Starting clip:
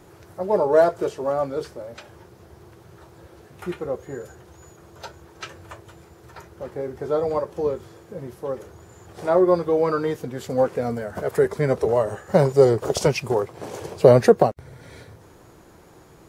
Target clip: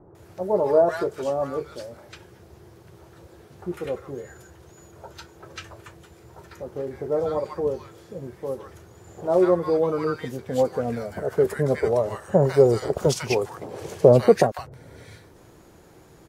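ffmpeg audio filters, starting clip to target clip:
-filter_complex "[0:a]acrossover=split=1100[a][b];[b]adelay=150[c];[a][c]amix=inputs=2:normalize=0,volume=-1dB"

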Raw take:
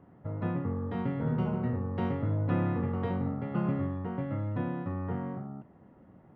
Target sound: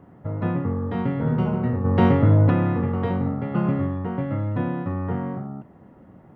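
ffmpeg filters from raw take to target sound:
-filter_complex "[0:a]asplit=3[a][b][c];[a]afade=t=out:st=1.84:d=0.02[d];[b]acontrast=73,afade=t=in:st=1.84:d=0.02,afade=t=out:st=2.49:d=0.02[e];[c]afade=t=in:st=2.49:d=0.02[f];[d][e][f]amix=inputs=3:normalize=0,volume=7.5dB"

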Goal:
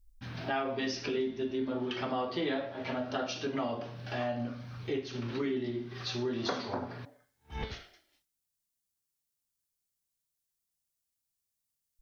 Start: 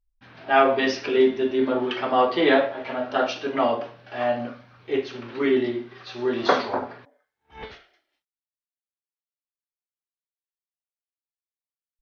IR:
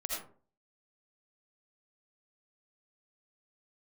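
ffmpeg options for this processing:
-filter_complex "[0:a]bass=f=250:g=13,treble=f=4k:g=12,acompressor=threshold=-34dB:ratio=4,asplit=2[a][b];[1:a]atrim=start_sample=2205[c];[b][c]afir=irnorm=-1:irlink=0,volume=-24dB[d];[a][d]amix=inputs=2:normalize=0"

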